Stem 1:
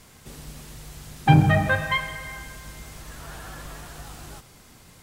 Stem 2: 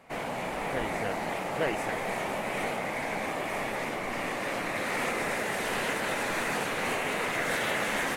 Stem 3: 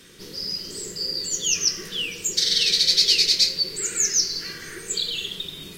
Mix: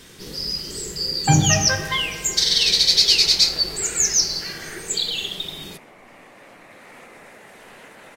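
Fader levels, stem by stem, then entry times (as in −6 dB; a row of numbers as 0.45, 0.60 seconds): −1.0, −14.0, +2.5 decibels; 0.00, 1.95, 0.00 seconds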